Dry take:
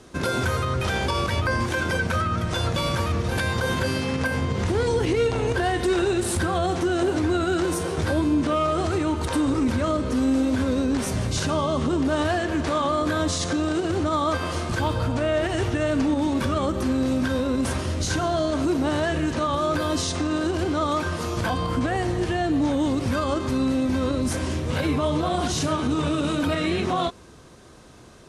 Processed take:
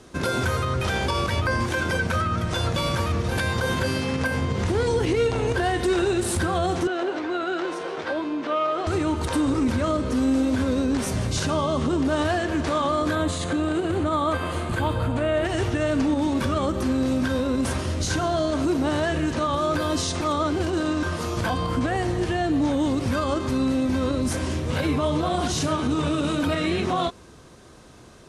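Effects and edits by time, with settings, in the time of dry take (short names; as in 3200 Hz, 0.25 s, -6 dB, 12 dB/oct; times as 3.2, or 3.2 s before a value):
6.87–8.87 BPF 420–3600 Hz
13.15–15.45 bell 5500 Hz -14 dB 0.48 oct
20.21–21.03 reverse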